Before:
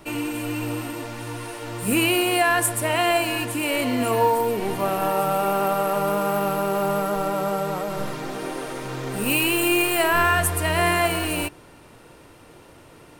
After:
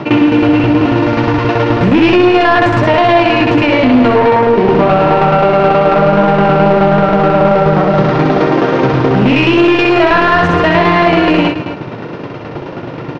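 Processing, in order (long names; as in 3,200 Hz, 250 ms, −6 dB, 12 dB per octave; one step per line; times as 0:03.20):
elliptic band-pass filter 120–6,100 Hz, stop band 40 dB
low-shelf EQ 360 Hz +5.5 dB
in parallel at +2 dB: downward compressor, threshold −28 dBFS, peak gain reduction 13.5 dB
on the sum: hard clipping −13 dBFS, distortion −16 dB
shaped tremolo saw down 9.4 Hz, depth 95%
soft clipping −20.5 dBFS, distortion −13 dB
high-frequency loss of the air 250 metres
on a send: loudspeakers that aren't time-aligned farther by 22 metres −3 dB, 95 metres −12 dB
on the sum: boost into a limiter +20 dB
highs frequency-modulated by the lows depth 0.12 ms
level −1 dB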